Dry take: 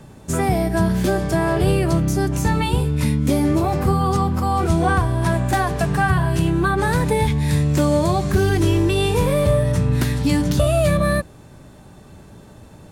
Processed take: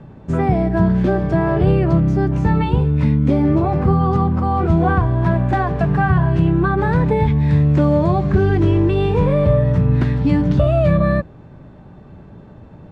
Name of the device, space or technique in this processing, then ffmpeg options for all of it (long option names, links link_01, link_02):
phone in a pocket: -af "lowpass=3100,equalizer=frequency=160:width_type=o:width=0.77:gain=3,highshelf=frequency=2100:gain=-9,volume=2dB"